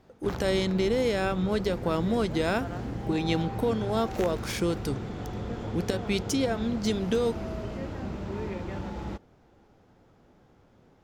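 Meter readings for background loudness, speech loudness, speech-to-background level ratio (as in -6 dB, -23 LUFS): -36.0 LUFS, -29.0 LUFS, 7.0 dB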